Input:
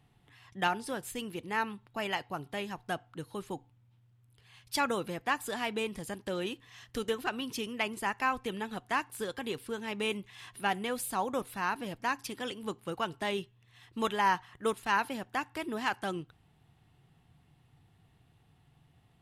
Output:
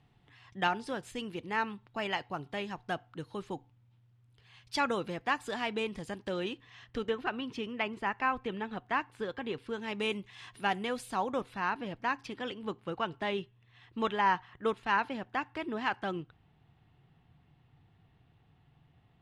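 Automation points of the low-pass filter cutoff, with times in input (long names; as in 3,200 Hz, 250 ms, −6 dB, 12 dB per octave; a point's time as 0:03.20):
0:06.33 5,600 Hz
0:07.08 2,900 Hz
0:09.53 2,900 Hz
0:09.94 6,500 Hz
0:10.83 6,500 Hz
0:11.78 3,500 Hz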